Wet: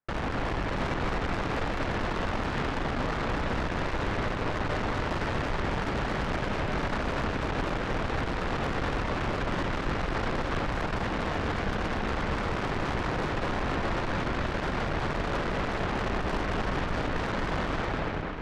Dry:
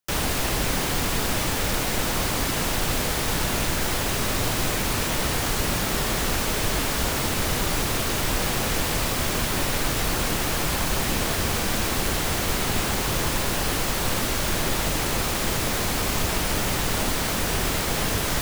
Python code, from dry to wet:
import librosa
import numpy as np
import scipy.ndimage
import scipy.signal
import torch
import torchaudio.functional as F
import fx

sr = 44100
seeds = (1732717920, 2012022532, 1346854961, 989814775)

p1 = fx.fade_out_tail(x, sr, length_s=0.69)
p2 = scipy.signal.sosfilt(scipy.signal.butter(4, 1800.0, 'lowpass', fs=sr, output='sos'), p1)
p3 = 10.0 ** (-28.0 / 20.0) * np.tanh(p2 / 10.0 ** (-28.0 / 20.0))
p4 = p3 + 10.0 ** (-7.5 / 20.0) * np.pad(p3, (int(654 * sr / 1000.0), 0))[:len(p3)]
p5 = fx.cheby_harmonics(p4, sr, harmonics=(4, 8), levels_db=(-10, -38), full_scale_db=-24.5)
y = p5 + fx.echo_single(p5, sr, ms=237, db=-6.5, dry=0)